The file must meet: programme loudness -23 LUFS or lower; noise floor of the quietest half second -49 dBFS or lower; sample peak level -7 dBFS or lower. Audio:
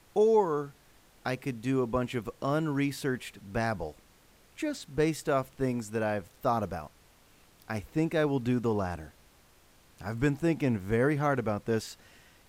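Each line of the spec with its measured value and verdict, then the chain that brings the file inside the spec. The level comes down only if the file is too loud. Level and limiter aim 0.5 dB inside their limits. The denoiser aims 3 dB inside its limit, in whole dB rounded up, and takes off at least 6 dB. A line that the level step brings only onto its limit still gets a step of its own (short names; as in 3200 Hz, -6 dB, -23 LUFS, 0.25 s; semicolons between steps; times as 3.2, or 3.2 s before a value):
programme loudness -30.5 LUFS: OK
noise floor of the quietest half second -61 dBFS: OK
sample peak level -13.5 dBFS: OK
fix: none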